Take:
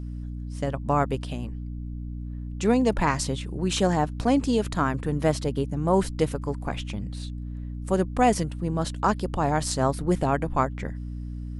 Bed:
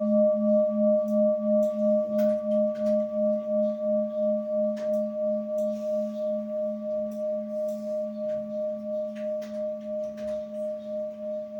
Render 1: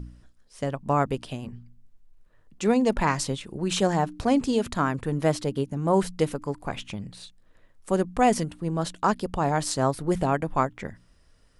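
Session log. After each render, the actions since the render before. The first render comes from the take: de-hum 60 Hz, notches 5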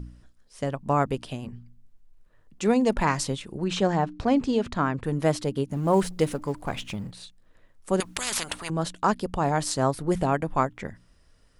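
3.64–5.04 s: distance through air 96 m; 5.70–7.11 s: companding laws mixed up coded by mu; 8.00–8.70 s: spectrum-flattening compressor 10:1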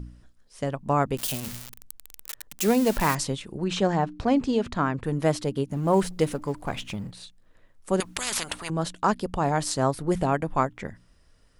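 1.17–3.15 s: zero-crossing glitches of -20 dBFS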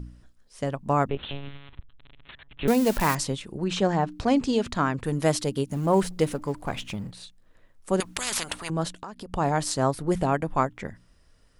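1.09–2.68 s: monotone LPC vocoder at 8 kHz 140 Hz; 4.08–5.86 s: treble shelf 3.4 kHz +8 dB; 8.91–9.33 s: compression 12:1, threshold -34 dBFS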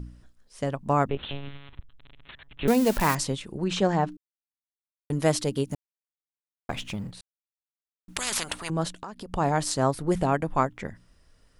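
4.17–5.10 s: mute; 5.75–6.69 s: mute; 7.21–8.08 s: mute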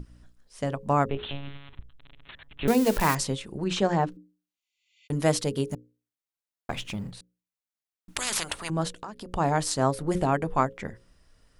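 hum notches 60/120/180/240/300/360/420/480/540 Hz; 4.44–5.05 s: spectral replace 2–7.5 kHz both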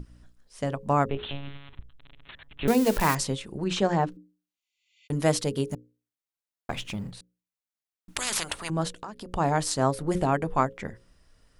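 no audible change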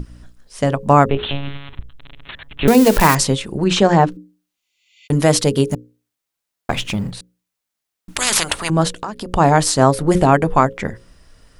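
loudness maximiser +12 dB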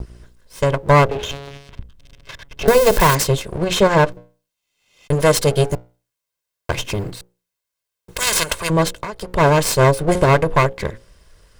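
comb filter that takes the minimum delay 1.9 ms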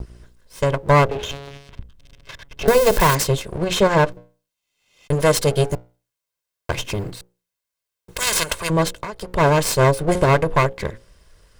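trim -2 dB

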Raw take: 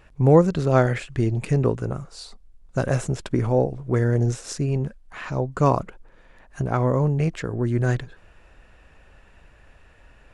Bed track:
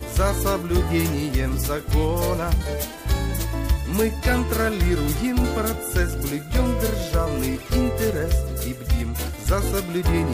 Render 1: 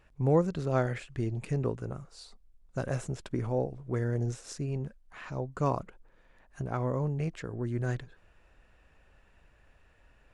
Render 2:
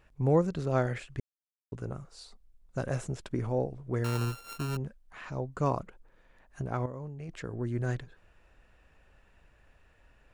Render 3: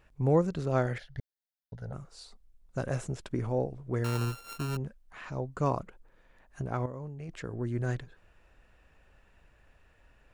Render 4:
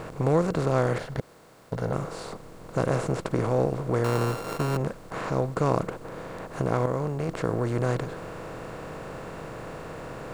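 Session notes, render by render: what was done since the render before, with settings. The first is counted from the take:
trim -10 dB
1.20–1.72 s: mute; 4.04–4.77 s: sorted samples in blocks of 32 samples; 6.86–7.29 s: gain -10 dB
0.98–1.93 s: static phaser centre 1.7 kHz, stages 8
spectral levelling over time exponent 0.4

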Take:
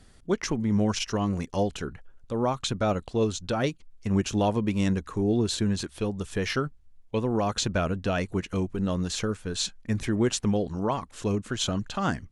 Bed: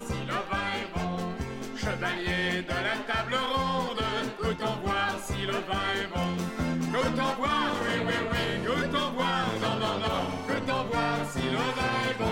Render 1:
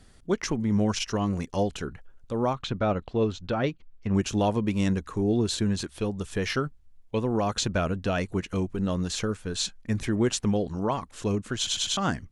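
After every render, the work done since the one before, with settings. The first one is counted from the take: 2.53–4.15 s: low-pass 3.3 kHz; 11.57 s: stutter in place 0.10 s, 4 plays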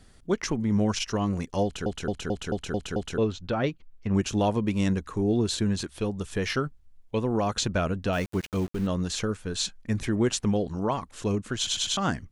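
1.64 s: stutter in place 0.22 s, 7 plays; 8.13–8.87 s: small samples zeroed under -38.5 dBFS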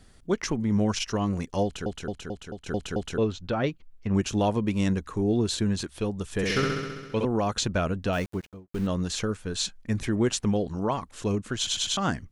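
1.61–2.66 s: fade out, to -11.5 dB; 6.32–7.25 s: flutter echo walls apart 11.4 m, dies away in 1.4 s; 8.15–8.72 s: studio fade out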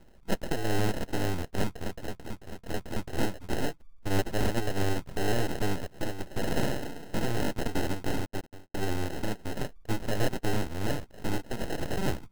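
sample-and-hold 38×; full-wave rectifier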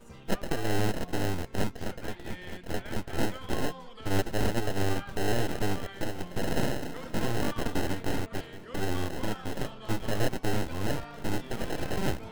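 add bed -17 dB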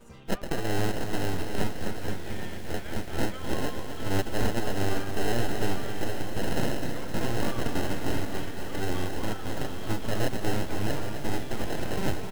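delay 815 ms -10 dB; bit-crushed delay 259 ms, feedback 55%, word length 7-bit, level -8.5 dB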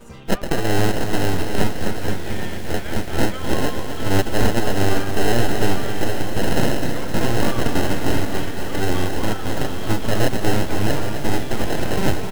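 trim +9 dB

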